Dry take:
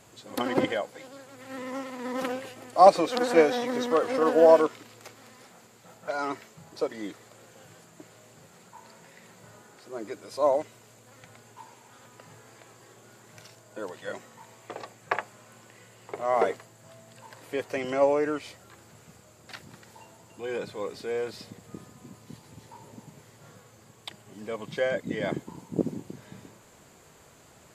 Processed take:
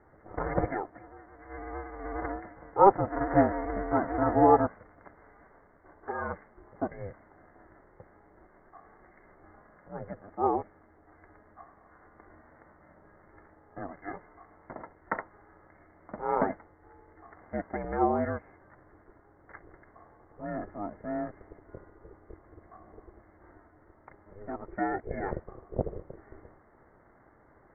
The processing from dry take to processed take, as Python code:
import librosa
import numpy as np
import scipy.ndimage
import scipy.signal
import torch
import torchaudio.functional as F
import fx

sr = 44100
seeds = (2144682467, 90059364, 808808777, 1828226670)

y = scipy.signal.sosfilt(scipy.signal.cheby1(8, 1.0, 1900.0, 'lowpass', fs=sr, output='sos'), x)
y = y * np.sin(2.0 * np.pi * 200.0 * np.arange(len(y)) / sr)